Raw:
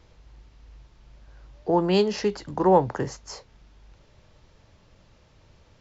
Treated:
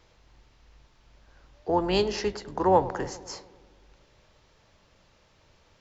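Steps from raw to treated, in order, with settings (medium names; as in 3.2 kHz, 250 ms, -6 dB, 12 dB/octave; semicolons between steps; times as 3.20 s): octave divider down 2 oct, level -5 dB; bass shelf 330 Hz -9.5 dB; filtered feedback delay 102 ms, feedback 70%, low-pass 1.6 kHz, level -16 dB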